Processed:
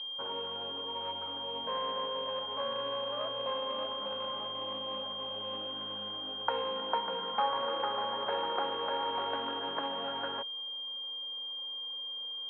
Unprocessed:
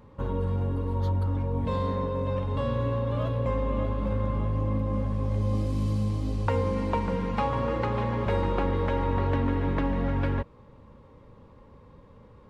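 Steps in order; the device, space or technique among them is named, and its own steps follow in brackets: toy sound module (decimation joined by straight lines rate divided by 8×; class-D stage that switches slowly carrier 3.2 kHz; cabinet simulation 710–3700 Hz, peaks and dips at 750 Hz +4 dB, 1.5 kHz +7 dB, 2.3 kHz -3 dB)

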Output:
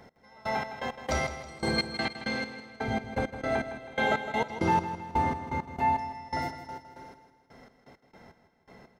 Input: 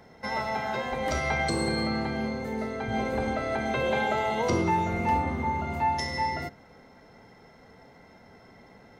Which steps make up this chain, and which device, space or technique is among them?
1.78–2.65 s: frequency weighting D; Schroeder reverb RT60 3.2 s, combs from 26 ms, DRR 7 dB; trance gate with a delay (trance gate "x....xx..x..x" 166 bpm -24 dB; feedback delay 160 ms, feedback 48%, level -11 dB)

